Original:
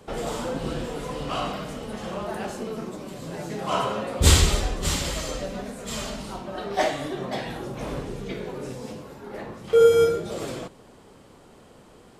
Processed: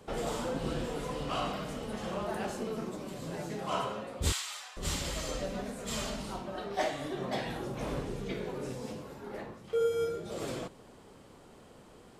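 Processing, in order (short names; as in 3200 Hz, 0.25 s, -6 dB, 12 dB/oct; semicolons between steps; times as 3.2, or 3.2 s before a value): vocal rider within 5 dB 0.5 s; 4.32–4.77 HPF 930 Hz 24 dB/oct; gain -9 dB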